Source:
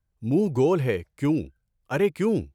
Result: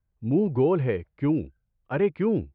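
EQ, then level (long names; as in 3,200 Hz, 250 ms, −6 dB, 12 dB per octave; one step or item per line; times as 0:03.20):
low-pass filter 4,800 Hz 12 dB per octave
high-frequency loss of the air 380 metres
0.0 dB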